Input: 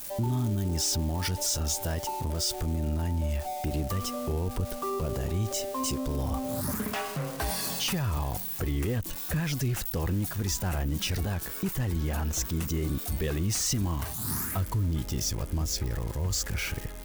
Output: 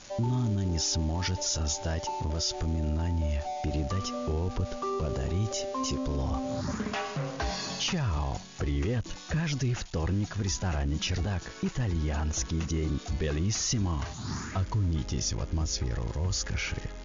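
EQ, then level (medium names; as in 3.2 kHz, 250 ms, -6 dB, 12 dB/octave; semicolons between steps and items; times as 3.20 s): brick-wall FIR low-pass 7.1 kHz; 0.0 dB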